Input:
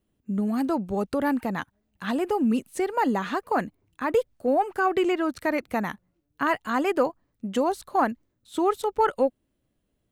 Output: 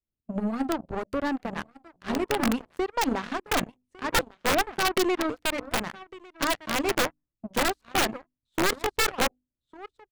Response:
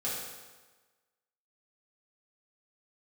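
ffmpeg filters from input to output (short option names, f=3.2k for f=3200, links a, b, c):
-filter_complex "[0:a]asplit=2[a][b];[b]asoftclip=type=tanh:threshold=-28dB,volume=-4dB[c];[a][c]amix=inputs=2:normalize=0,lowshelf=f=130:g=11.5,adynamicsmooth=sensitivity=3.5:basefreq=5.1k,adynamicequalizer=threshold=0.0141:dfrequency=200:dqfactor=2.6:tfrequency=200:tqfactor=2.6:attack=5:release=100:ratio=0.375:range=3.5:mode=cutabove:tftype=bell,asplit=2[d][e];[e]aecho=0:1:1153:0.355[f];[d][f]amix=inputs=2:normalize=0,aeval=exprs='(mod(4.73*val(0)+1,2)-1)/4.73':c=same,bandreject=f=50:t=h:w=6,bandreject=f=100:t=h:w=6,bandreject=f=150:t=h:w=6,bandreject=f=200:t=h:w=6,bandreject=f=250:t=h:w=6,bandreject=f=300:t=h:w=6,aeval=exprs='0.282*(cos(1*acos(clip(val(0)/0.282,-1,1)))-cos(1*PI/2))+0.1*(cos(2*acos(clip(val(0)/0.282,-1,1)))-cos(2*PI/2))+0.0178*(cos(4*acos(clip(val(0)/0.282,-1,1)))-cos(4*PI/2))+0.002*(cos(5*acos(clip(val(0)/0.282,-1,1)))-cos(5*PI/2))+0.0447*(cos(7*acos(clip(val(0)/0.282,-1,1)))-cos(7*PI/2))':c=same,volume=-5dB"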